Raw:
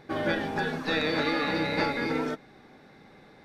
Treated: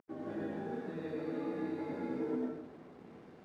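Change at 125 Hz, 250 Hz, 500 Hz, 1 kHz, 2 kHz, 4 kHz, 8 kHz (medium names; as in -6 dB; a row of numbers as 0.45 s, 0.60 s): -11.5 dB, -7.0 dB, -9.0 dB, -15.5 dB, -22.5 dB, under -25 dB, under -20 dB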